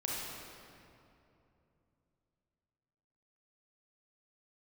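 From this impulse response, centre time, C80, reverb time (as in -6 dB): 148 ms, -0.5 dB, 2.8 s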